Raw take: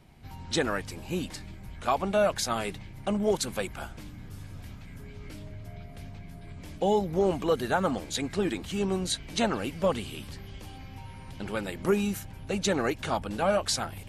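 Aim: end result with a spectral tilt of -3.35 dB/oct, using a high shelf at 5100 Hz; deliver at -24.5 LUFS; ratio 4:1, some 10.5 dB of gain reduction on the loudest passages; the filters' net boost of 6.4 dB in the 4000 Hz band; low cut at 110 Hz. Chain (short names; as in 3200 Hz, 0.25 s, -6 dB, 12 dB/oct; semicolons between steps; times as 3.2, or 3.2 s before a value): HPF 110 Hz; bell 4000 Hz +3.5 dB; high shelf 5100 Hz +9 dB; compressor 4:1, threshold -32 dBFS; gain +12 dB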